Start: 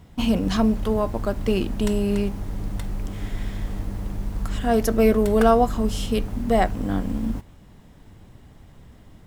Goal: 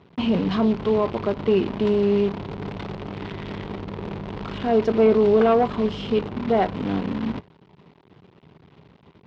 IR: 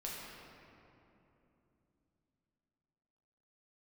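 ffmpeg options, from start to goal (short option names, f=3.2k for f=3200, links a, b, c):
-af "bandreject=f=900:w=24,acrusher=bits=6:dc=4:mix=0:aa=0.000001,asoftclip=type=tanh:threshold=-13dB,highpass=110,equalizer=f=160:t=q:w=4:g=6,equalizer=f=400:t=q:w=4:g=8,equalizer=f=950:t=q:w=4:g=5,equalizer=f=1.7k:t=q:w=4:g=-3,lowpass=f=3.8k:w=0.5412,lowpass=f=3.8k:w=1.3066"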